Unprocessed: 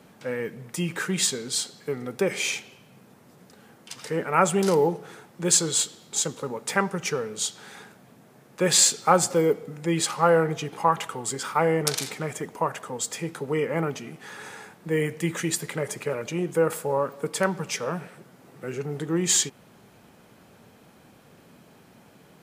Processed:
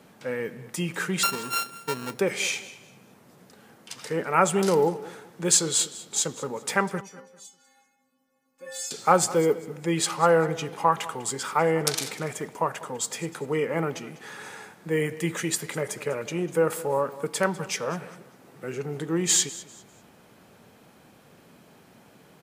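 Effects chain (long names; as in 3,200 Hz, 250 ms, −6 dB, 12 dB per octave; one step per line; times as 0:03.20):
0:01.23–0:02.11: samples sorted by size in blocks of 32 samples
low-shelf EQ 200 Hz −3 dB
0:07.01–0:08.91: stiff-string resonator 260 Hz, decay 0.68 s, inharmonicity 0.008
repeating echo 198 ms, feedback 29%, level −18 dB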